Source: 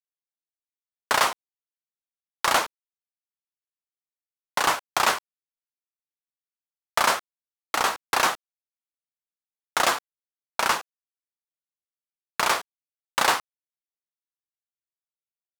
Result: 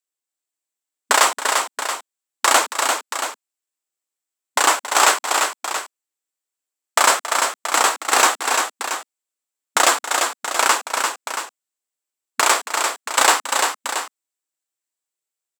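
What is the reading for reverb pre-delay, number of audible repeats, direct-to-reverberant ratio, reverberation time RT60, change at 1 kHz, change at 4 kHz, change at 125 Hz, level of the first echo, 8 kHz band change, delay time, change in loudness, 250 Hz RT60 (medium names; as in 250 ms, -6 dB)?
no reverb, 3, no reverb, no reverb, +7.0 dB, +7.5 dB, under -20 dB, -13.0 dB, +13.0 dB, 275 ms, +6.0 dB, no reverb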